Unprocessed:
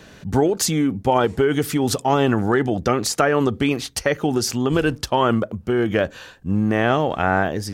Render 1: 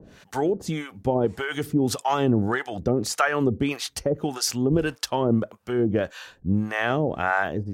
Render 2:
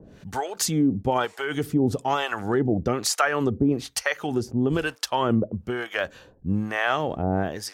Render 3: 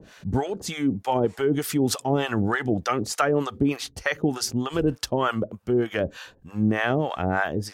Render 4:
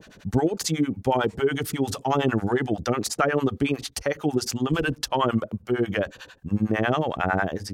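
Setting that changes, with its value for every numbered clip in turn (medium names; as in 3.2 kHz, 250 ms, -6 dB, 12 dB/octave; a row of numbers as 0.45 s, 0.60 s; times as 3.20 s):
harmonic tremolo, rate: 1.7 Hz, 1.1 Hz, 3.3 Hz, 11 Hz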